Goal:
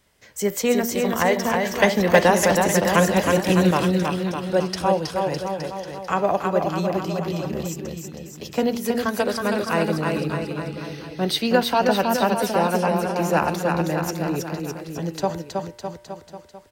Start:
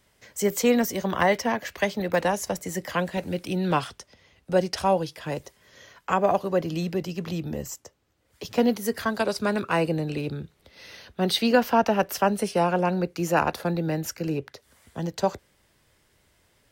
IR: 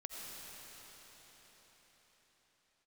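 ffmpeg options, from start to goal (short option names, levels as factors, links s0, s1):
-filter_complex "[0:a]bandreject=f=118.5:t=h:w=4,bandreject=f=237:t=h:w=4,bandreject=f=355.5:t=h:w=4,bandreject=f=474:t=h:w=4,bandreject=f=592.5:t=h:w=4,bandreject=f=711:t=h:w=4,bandreject=f=829.5:t=h:w=4,bandreject=f=948:t=h:w=4,bandreject=f=1066.5:t=h:w=4,bandreject=f=1185:t=h:w=4,bandreject=f=1303.5:t=h:w=4,bandreject=f=1422:t=h:w=4,bandreject=f=1540.5:t=h:w=4,bandreject=f=1659:t=h:w=4,bandreject=f=1777.5:t=h:w=4,bandreject=f=1896:t=h:w=4,bandreject=f=2014.5:t=h:w=4,bandreject=f=2133:t=h:w=4,bandreject=f=2251.5:t=h:w=4,bandreject=f=2370:t=h:w=4,bandreject=f=2488.5:t=h:w=4,bandreject=f=2607:t=h:w=4,bandreject=f=2725.5:t=h:w=4,bandreject=f=2844:t=h:w=4,bandreject=f=2962.5:t=h:w=4,bandreject=f=3081:t=h:w=4,bandreject=f=3199.5:t=h:w=4,asettb=1/sr,asplit=3[s0][s1][s2];[s0]atrim=end=1.714[s3];[s1]atrim=start=1.71:end=3.71,asetpts=PTS-STARTPTS,afade=t=in:d=0.004:c=qsin,afade=t=out:st=1.996:d=0.004:c=qsin,acontrast=85[s4];[s2]atrim=start=3.706[s5];[s3][s4]acrossfade=d=0.004:c1=hsin:c2=qsin[s6];[s6][s5]acrossfade=d=0.004:c1=qsin:c2=hsin,aecho=1:1:320|608|867.2|1100|1310:0.631|0.398|0.251|0.158|0.1,volume=1.12"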